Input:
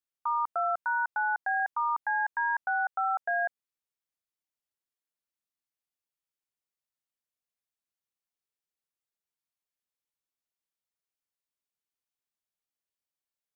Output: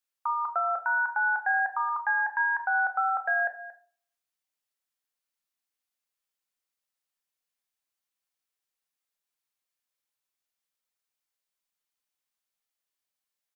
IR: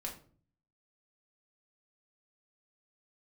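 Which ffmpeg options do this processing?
-filter_complex "[0:a]lowshelf=f=480:g=-9.5,aecho=1:1:229:0.158,asplit=2[a][b];[1:a]atrim=start_sample=2205[c];[b][c]afir=irnorm=-1:irlink=0,volume=1dB[d];[a][d]amix=inputs=2:normalize=0"

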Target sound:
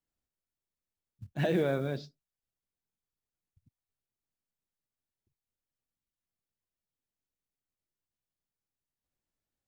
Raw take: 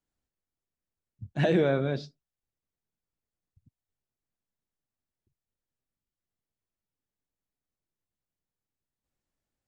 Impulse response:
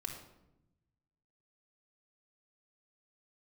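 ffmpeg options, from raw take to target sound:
-af "acrusher=bits=8:mode=log:mix=0:aa=0.000001,volume=-4.5dB"

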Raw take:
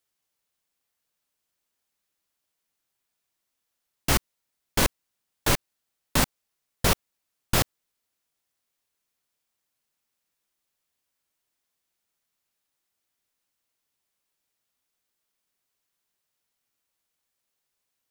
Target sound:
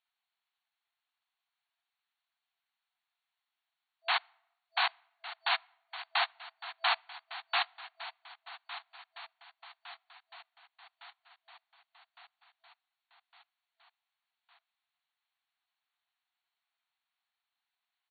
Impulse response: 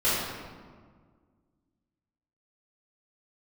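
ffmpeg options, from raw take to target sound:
-filter_complex "[0:a]aecho=1:1:1159|2318|3477|4636|5795|6954:0.2|0.118|0.0695|0.041|0.0242|0.0143,asplit=2[a][b];[1:a]atrim=start_sample=2205,asetrate=88200,aresample=44100[c];[b][c]afir=irnorm=-1:irlink=0,volume=-37dB[d];[a][d]amix=inputs=2:normalize=0,asplit=3[e][f][g];[f]asetrate=33038,aresample=44100,atempo=1.33484,volume=-4dB[h];[g]asetrate=35002,aresample=44100,atempo=1.25992,volume=-10dB[i];[e][h][i]amix=inputs=3:normalize=0,afftfilt=real='re*between(b*sr/4096,660,4500)':imag='im*between(b*sr/4096,660,4500)':win_size=4096:overlap=0.75,volume=-3.5dB"

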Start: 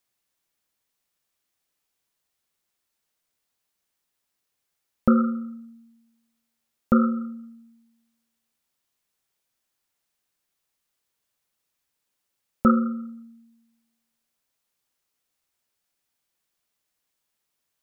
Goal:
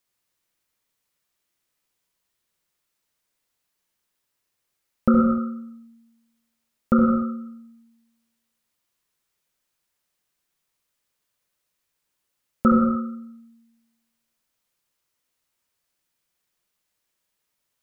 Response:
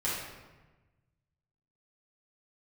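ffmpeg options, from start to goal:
-filter_complex "[0:a]bandreject=f=780:w=15,asplit=2[a][b];[1:a]atrim=start_sample=2205,afade=t=out:st=0.29:d=0.01,atrim=end_sample=13230,adelay=65[c];[b][c]afir=irnorm=-1:irlink=0,volume=-9dB[d];[a][d]amix=inputs=2:normalize=0"

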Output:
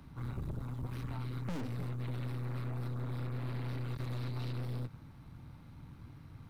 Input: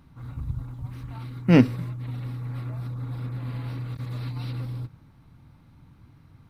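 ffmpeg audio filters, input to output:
-filter_complex "[0:a]aeval=exprs='(tanh(50.1*val(0)+0.7)-tanh(0.7))/50.1':c=same,acrossover=split=110|420[a][b][c];[a]acompressor=threshold=-46dB:ratio=4[d];[b]acompressor=threshold=-46dB:ratio=4[e];[c]acompressor=threshold=-52dB:ratio=4[f];[d][e][f]amix=inputs=3:normalize=0,volume=5dB"

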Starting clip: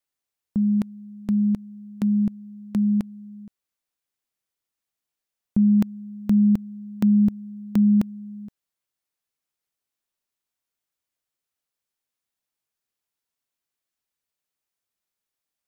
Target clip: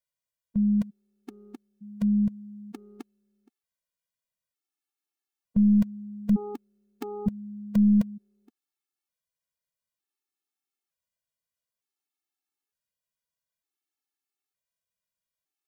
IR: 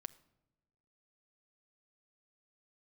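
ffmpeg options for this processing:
-af "aeval=exprs='0.224*(cos(1*acos(clip(val(0)/0.224,-1,1)))-cos(1*PI/2))+0.0282*(cos(2*acos(clip(val(0)/0.224,-1,1)))-cos(2*PI/2))+0.0112*(cos(4*acos(clip(val(0)/0.224,-1,1)))-cos(4*PI/2))+0.00316*(cos(6*acos(clip(val(0)/0.224,-1,1)))-cos(6*PI/2))':c=same,afftfilt=real='re*gt(sin(2*PI*0.55*pts/sr)*(1-2*mod(floor(b*sr/1024/230),2)),0)':imag='im*gt(sin(2*PI*0.55*pts/sr)*(1-2*mod(floor(b*sr/1024/230),2)),0)':win_size=1024:overlap=0.75,volume=-2dB"

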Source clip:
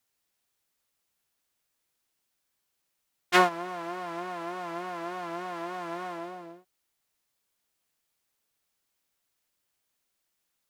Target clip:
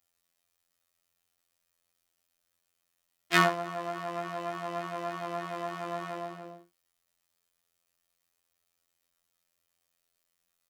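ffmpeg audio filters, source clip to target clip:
-af "aecho=1:1:10|70:0.668|0.316,afftfilt=real='hypot(re,im)*cos(PI*b)':imag='0':win_size=2048:overlap=0.75,volume=1.5dB"

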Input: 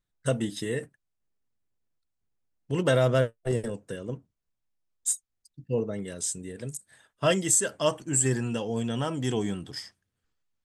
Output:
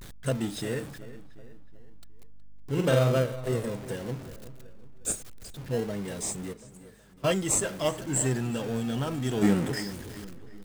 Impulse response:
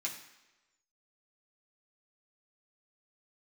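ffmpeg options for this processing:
-filter_complex "[0:a]aeval=exprs='val(0)+0.5*0.0188*sgn(val(0))':c=same,asplit=3[a][b][c];[a]afade=t=out:st=6.52:d=0.02[d];[b]agate=range=-18dB:threshold=-27dB:ratio=16:detection=peak,afade=t=in:st=6.52:d=0.02,afade=t=out:st=7.3:d=0.02[e];[c]afade=t=in:st=7.3:d=0.02[f];[d][e][f]amix=inputs=3:normalize=0,asplit=3[g][h][i];[g]afade=t=out:st=9.41:d=0.02[j];[h]equalizer=f=125:t=o:w=1:g=5,equalizer=f=250:t=o:w=1:g=9,equalizer=f=500:t=o:w=1:g=10,equalizer=f=1k:t=o:w=1:g=5,equalizer=f=2k:t=o:w=1:g=12,equalizer=f=4k:t=o:w=1:g=-7,equalizer=f=8k:t=o:w=1:g=7,afade=t=in:st=9.41:d=0.02,afade=t=out:st=9.81:d=0.02[k];[i]afade=t=in:st=9.81:d=0.02[l];[j][k][l]amix=inputs=3:normalize=0,aeval=exprs='val(0)+0.00126*(sin(2*PI*50*n/s)+sin(2*PI*2*50*n/s)/2+sin(2*PI*3*50*n/s)/3+sin(2*PI*4*50*n/s)/4+sin(2*PI*5*50*n/s)/5)':c=same,asettb=1/sr,asplit=3[m][n][o];[m]atrim=end=2.724[p];[n]atrim=start=2.72:end=3.17,asetpts=PTS-STARTPTS,afade=t=in:d=0.004:c=qsin,afade=t=out:st=0.446:d=0.004:c=qsin,asplit=2[q][r];[r]adelay=46,volume=-4dB[s];[q][s]amix=inputs=2:normalize=0,atrim=end_sample=19845[t];[o]atrim=start=3.166[u];[p][t]acrossfade=d=0.004:c1=hsin:c2=qsin[v];[v][u]acrossfade=d=0.004:c1=qsin:c2=hsin,asplit=2[w][x];[x]adelay=368,lowpass=f=2.9k:p=1,volume=-15dB,asplit=2[y][z];[z]adelay=368,lowpass=f=2.9k:p=1,volume=0.48,asplit=2[aa][ab];[ab]adelay=368,lowpass=f=2.9k:p=1,volume=0.48,asplit=2[ac][ad];[ad]adelay=368,lowpass=f=2.9k:p=1,volume=0.48[ae];[w][y][aa][ac][ae]amix=inputs=5:normalize=0,asplit=2[af][ag];[ag]acrusher=samples=34:mix=1:aa=0.000001:lfo=1:lforange=20.4:lforate=0.25,volume=-9dB[ah];[af][ah]amix=inputs=2:normalize=0,volume=-4.5dB"

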